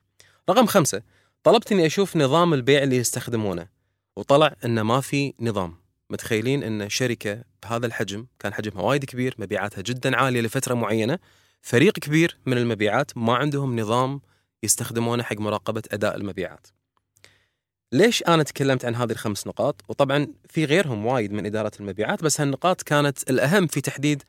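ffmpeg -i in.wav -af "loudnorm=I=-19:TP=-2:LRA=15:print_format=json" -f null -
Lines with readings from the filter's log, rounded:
"input_i" : "-22.7",
"input_tp" : "-3.5",
"input_lra" : "5.1",
"input_thresh" : "-33.1",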